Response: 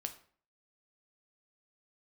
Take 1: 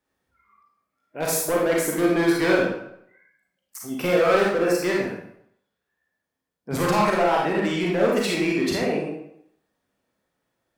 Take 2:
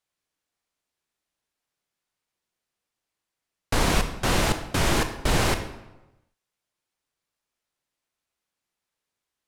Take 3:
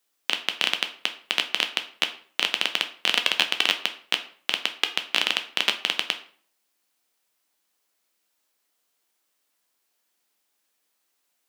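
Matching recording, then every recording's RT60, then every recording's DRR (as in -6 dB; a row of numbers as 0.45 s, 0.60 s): 3; 0.75 s, 1.0 s, 0.50 s; -3.0 dB, 7.0 dB, 6.5 dB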